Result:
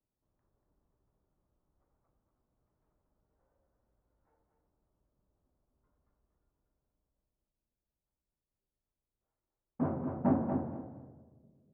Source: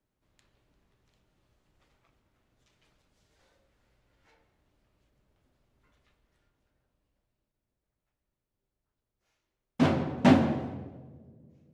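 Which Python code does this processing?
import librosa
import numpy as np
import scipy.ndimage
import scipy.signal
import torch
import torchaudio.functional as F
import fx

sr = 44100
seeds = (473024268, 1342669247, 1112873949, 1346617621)

y = scipy.signal.sosfilt(scipy.signal.butter(4, 1200.0, 'lowpass', fs=sr, output='sos'), x)
y = fx.echo_feedback(y, sr, ms=237, feedback_pct=21, wet_db=-6)
y = y * 10.0 ** (-8.5 / 20.0)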